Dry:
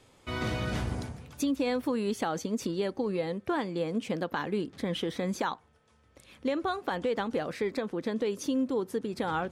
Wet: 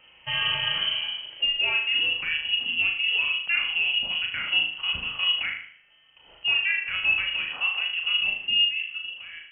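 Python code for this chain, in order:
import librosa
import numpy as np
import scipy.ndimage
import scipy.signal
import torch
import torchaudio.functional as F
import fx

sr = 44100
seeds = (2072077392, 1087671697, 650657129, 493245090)

p1 = fx.fade_out_tail(x, sr, length_s=1.52)
p2 = fx.rider(p1, sr, range_db=4, speed_s=0.5)
p3 = p1 + (p2 * 10.0 ** (-2.0 / 20.0))
p4 = fx.hpss(p3, sr, part='percussive', gain_db=-8)
p5 = fx.room_flutter(p4, sr, wall_m=6.5, rt60_s=0.56)
y = fx.freq_invert(p5, sr, carrier_hz=3100)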